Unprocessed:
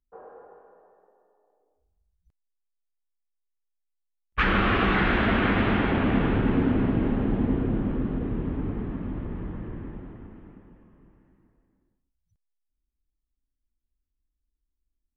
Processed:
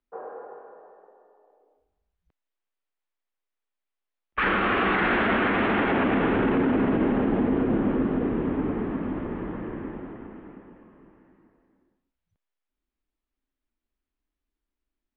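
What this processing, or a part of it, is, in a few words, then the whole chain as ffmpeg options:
DJ mixer with the lows and highs turned down: -filter_complex "[0:a]acrossover=split=220 3500:gain=0.178 1 0.0794[s0][s1][s2];[s0][s1][s2]amix=inputs=3:normalize=0,alimiter=limit=0.0708:level=0:latency=1:release=29,volume=2.51"

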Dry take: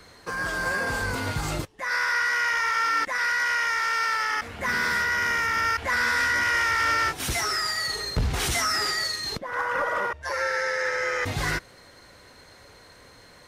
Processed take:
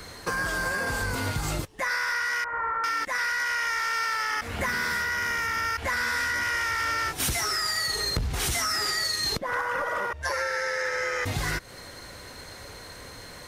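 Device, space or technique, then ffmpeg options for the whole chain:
ASMR close-microphone chain: -filter_complex "[0:a]asettb=1/sr,asplit=3[s0][s1][s2];[s0]atrim=end=2.444[s3];[s1]atrim=start=2.44:end=2.84,asetpts=PTS-STARTPTS,afade=t=in:d=0.004:c=qsin,afade=t=out:st=0.396:d=0.004:c=qsin,lowpass=f=1300:w=0.5412,lowpass=f=1300:w=1.3066[s4];[s2]atrim=start=2.836[s5];[s3][s4]acrossfade=d=0.004:c1=hsin:c2=qsin[s6];[s6][s5]acrossfade=d=0.004:c1=qsin:c2=hsin,lowshelf=f=110:g=4.5,acompressor=threshold=0.0251:ratio=10,highshelf=f=7400:g=7,volume=2.11"

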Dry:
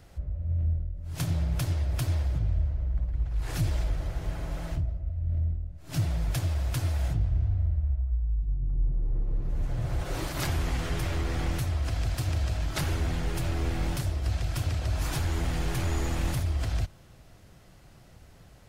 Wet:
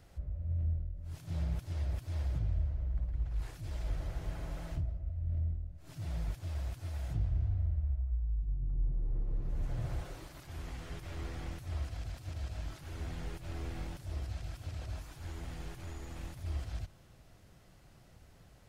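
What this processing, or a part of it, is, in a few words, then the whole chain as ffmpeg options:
de-esser from a sidechain: -filter_complex "[0:a]asplit=2[s0][s1];[s1]highpass=5700,apad=whole_len=824111[s2];[s0][s2]sidechaincompress=threshold=0.00251:ratio=16:attack=1.3:release=84,volume=0.501"

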